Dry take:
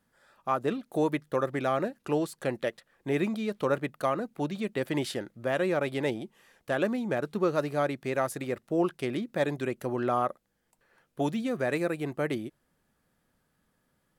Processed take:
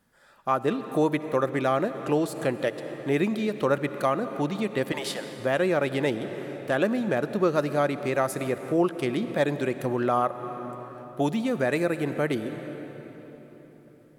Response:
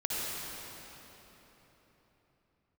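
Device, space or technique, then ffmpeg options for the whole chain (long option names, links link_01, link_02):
ducked reverb: -filter_complex "[0:a]asettb=1/sr,asplit=3[link_01][link_02][link_03];[link_01]atrim=end=4.924[link_04];[link_02]atrim=start=4.92:end=5.4,asetpts=PTS-STARTPTS,afade=type=in:duration=0.004:curve=qsin,afade=type=out:start_time=0.476:duration=0.004:curve=qsin,highpass=frequency=560:width=0.5412,highpass=frequency=560:width=1.3066[link_05];[link_03]atrim=start=5.396[link_06];[link_04][link_05]acrossfade=duration=0.004:curve1=hsin:curve2=qsin[link_07];[link_07][link_06]acrossfade=duration=0.004:curve1=qsin:curve2=hsin,asplit=3[link_08][link_09][link_10];[1:a]atrim=start_sample=2205[link_11];[link_09][link_11]afir=irnorm=-1:irlink=0[link_12];[link_10]apad=whole_len=625572[link_13];[link_12][link_13]sidechaincompress=threshold=-31dB:ratio=8:attack=16:release=291,volume=-13.5dB[link_14];[link_08][link_14]amix=inputs=2:normalize=0,volume=3dB"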